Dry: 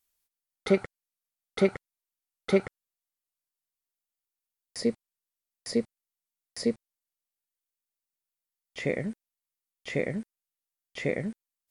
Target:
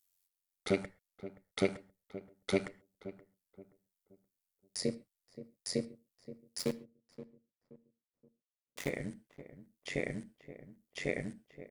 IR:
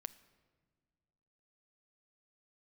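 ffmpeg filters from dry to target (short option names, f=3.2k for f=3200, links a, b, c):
-filter_complex "[0:a]highshelf=f=3k:g=9,asplit=3[a][b][c];[a]afade=t=out:st=6.58:d=0.02[d];[b]aeval=exprs='val(0)*gte(abs(val(0)),0.0335)':c=same,afade=t=in:st=6.58:d=0.02,afade=t=out:st=8.88:d=0.02[e];[c]afade=t=in:st=8.88:d=0.02[f];[d][e][f]amix=inputs=3:normalize=0,tremolo=f=92:d=0.857,asplit=2[g][h];[h]adelay=525,lowpass=f=910:p=1,volume=-13.5dB,asplit=2[i][j];[j]adelay=525,lowpass=f=910:p=1,volume=0.38,asplit=2[k][l];[l]adelay=525,lowpass=f=910:p=1,volume=0.38,asplit=2[m][n];[n]adelay=525,lowpass=f=910:p=1,volume=0.38[o];[g][i][k][m][o]amix=inputs=5:normalize=0[p];[1:a]atrim=start_sample=2205,atrim=end_sample=6174[q];[p][q]afir=irnorm=-1:irlink=0"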